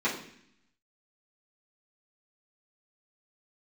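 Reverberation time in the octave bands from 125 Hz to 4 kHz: 0.95 s, 0.90 s, 0.65 s, 0.65 s, 0.80 s, 0.75 s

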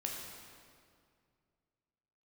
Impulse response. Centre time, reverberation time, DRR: 88 ms, 2.2 s, -1.0 dB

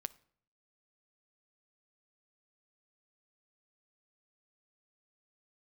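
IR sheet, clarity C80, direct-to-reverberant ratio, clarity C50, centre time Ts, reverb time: 25.0 dB, 16.5 dB, 21.0 dB, 2 ms, 0.60 s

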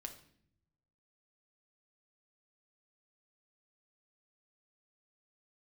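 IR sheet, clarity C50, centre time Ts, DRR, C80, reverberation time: 10.5 dB, 12 ms, 4.5 dB, 14.0 dB, no single decay rate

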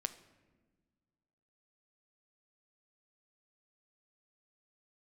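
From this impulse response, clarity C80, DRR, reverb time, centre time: 16.5 dB, 10.0 dB, 1.4 s, 6 ms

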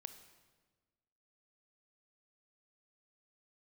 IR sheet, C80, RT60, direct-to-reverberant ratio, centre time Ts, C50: 12.0 dB, 1.4 s, 9.5 dB, 13 ms, 10.5 dB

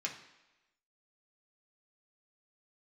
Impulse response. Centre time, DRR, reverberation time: 20 ms, -2.0 dB, 1.0 s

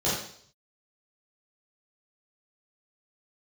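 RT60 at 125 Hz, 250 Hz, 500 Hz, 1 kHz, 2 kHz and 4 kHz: 0.80 s, 0.55 s, 0.60 s, 0.55 s, 0.55 s, 0.65 s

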